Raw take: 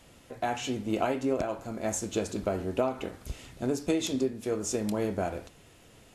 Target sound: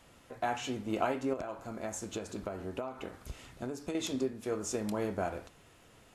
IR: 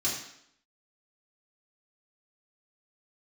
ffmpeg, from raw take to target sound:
-filter_complex "[0:a]equalizer=frequency=1200:width=1:gain=5.5,asettb=1/sr,asplit=3[link_01][link_02][link_03];[link_01]atrim=end=1.334[link_04];[link_02]atrim=start=1.33:end=3.95,asetpts=PTS-STARTPTS,afade=type=in:duration=0.004:curve=qsin,afade=type=out:start_time=2.616:duration=0.004:curve=qsin,acompressor=threshold=-30dB:ratio=5[link_05];[link_03]atrim=start=3.946[link_06];[link_04][link_05]acrossfade=duration=0.004:curve1=hsin:curve2=qsin[link_07];[link_07][link_06]acrossfade=duration=0.004:curve1=qsin:curve2=hsin,volume=-5dB"

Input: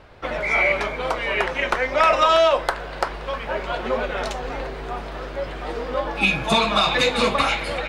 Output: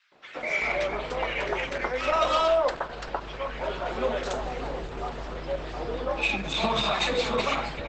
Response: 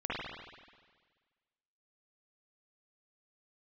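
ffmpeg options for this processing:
-filter_complex "[0:a]asettb=1/sr,asplit=3[link_01][link_02][link_03];[link_01]atrim=end=3.904[link_04];[link_02]atrim=start=3.9:end=5.35,asetpts=PTS-STARTPTS,afade=type=in:duration=0.004:curve=qsin,afade=type=out:start_time=1.446:duration=0.004:curve=qsin,equalizer=frequency=10000:width=1.3:gain=7[link_05];[link_03]atrim=start=5.346[link_06];[link_04][link_05]acrossfade=duration=0.004:curve1=hsin:curve2=qsin[link_07];[link_07][link_06]acrossfade=duration=0.004:curve1=qsin:curve2=hsin,dynaudnorm=framelen=180:gausssize=5:maxgain=5.5dB,asoftclip=type=tanh:threshold=-6dB,acrossover=split=160|1600[link_08][link_09][link_10];[link_09]adelay=120[link_11];[link_08]adelay=380[link_12];[link_12][link_11][link_10]amix=inputs=3:normalize=0,volume=-7.5dB" -ar 48000 -c:a libopus -b:a 12k

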